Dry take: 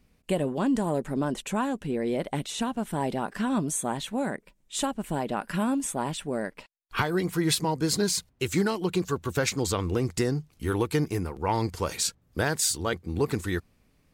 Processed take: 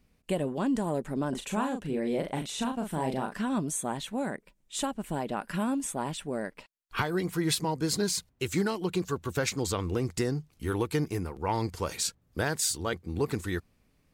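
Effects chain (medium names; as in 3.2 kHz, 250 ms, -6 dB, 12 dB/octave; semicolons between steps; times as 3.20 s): 1.29–3.36 s: doubling 38 ms -5.5 dB; trim -3 dB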